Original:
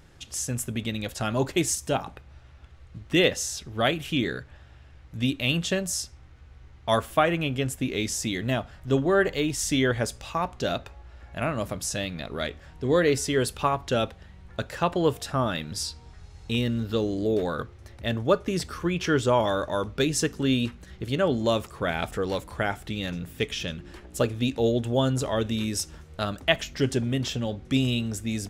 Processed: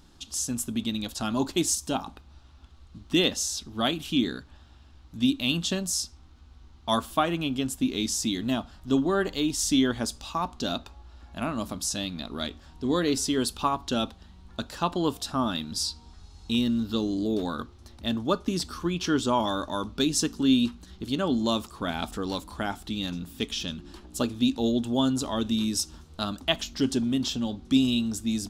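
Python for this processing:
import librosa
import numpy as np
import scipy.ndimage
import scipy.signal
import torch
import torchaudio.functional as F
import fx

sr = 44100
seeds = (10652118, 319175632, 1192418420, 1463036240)

y = fx.graphic_eq(x, sr, hz=(125, 250, 500, 1000, 2000, 4000), db=(-10, 8, -10, 4, -11, 6))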